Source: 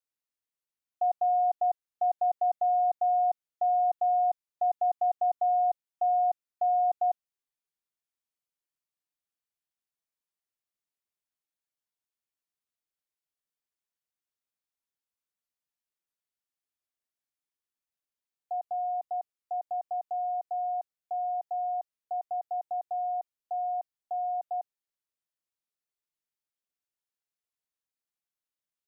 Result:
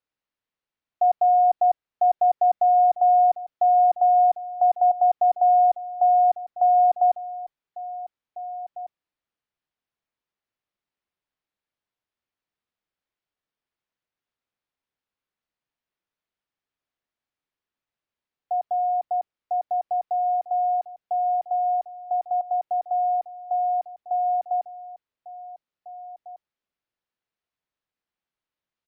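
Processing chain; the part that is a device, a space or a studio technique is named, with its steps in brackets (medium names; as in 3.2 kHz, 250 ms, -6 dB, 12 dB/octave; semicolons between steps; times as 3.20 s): shout across a valley (distance through air 210 m; echo from a far wall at 300 m, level -14 dB); trim +8.5 dB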